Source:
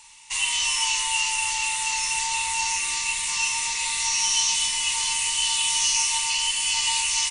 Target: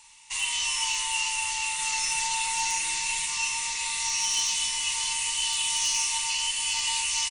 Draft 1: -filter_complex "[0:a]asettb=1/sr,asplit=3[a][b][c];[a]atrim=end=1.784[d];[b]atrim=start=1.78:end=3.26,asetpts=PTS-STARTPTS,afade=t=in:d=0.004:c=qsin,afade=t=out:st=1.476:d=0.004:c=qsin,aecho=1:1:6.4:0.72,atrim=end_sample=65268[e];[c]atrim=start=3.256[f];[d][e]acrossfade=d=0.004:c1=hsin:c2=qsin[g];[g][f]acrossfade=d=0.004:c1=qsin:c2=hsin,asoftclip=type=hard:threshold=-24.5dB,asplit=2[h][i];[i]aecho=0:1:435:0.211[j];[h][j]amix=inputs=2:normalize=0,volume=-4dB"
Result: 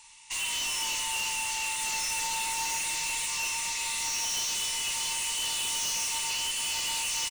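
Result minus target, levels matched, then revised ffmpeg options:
hard clip: distortion +22 dB
-filter_complex "[0:a]asettb=1/sr,asplit=3[a][b][c];[a]atrim=end=1.784[d];[b]atrim=start=1.78:end=3.26,asetpts=PTS-STARTPTS,afade=t=in:d=0.004:c=qsin,afade=t=out:st=1.476:d=0.004:c=qsin,aecho=1:1:6.4:0.72,atrim=end_sample=65268[e];[c]atrim=start=3.256[f];[d][e]acrossfade=d=0.004:c1=hsin:c2=qsin[g];[g][f]acrossfade=d=0.004:c1=qsin:c2=hsin,asoftclip=type=hard:threshold=-14.5dB,asplit=2[h][i];[i]aecho=0:1:435:0.211[j];[h][j]amix=inputs=2:normalize=0,volume=-4dB"

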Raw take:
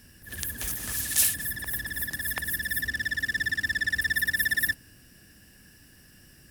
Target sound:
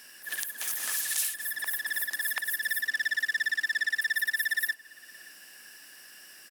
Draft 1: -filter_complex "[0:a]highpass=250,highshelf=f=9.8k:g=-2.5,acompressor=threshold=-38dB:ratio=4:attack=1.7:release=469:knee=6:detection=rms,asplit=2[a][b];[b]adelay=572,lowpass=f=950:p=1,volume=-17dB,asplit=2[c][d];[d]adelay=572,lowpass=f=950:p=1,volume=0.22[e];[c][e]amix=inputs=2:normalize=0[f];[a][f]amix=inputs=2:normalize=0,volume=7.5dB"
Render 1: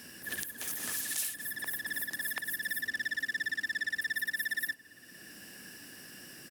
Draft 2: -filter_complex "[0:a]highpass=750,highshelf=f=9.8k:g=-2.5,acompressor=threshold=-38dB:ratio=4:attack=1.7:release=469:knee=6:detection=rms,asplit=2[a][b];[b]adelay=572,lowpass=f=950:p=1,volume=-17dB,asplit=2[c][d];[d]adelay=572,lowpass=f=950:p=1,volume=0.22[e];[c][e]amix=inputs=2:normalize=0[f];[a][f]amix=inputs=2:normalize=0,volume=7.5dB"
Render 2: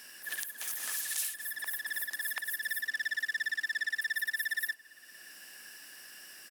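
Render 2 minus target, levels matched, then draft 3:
compressor: peak gain reduction +5 dB
-filter_complex "[0:a]highpass=750,highshelf=f=9.8k:g=-2.5,acompressor=threshold=-31.5dB:ratio=4:attack=1.7:release=469:knee=6:detection=rms,asplit=2[a][b];[b]adelay=572,lowpass=f=950:p=1,volume=-17dB,asplit=2[c][d];[d]adelay=572,lowpass=f=950:p=1,volume=0.22[e];[c][e]amix=inputs=2:normalize=0[f];[a][f]amix=inputs=2:normalize=0,volume=7.5dB"

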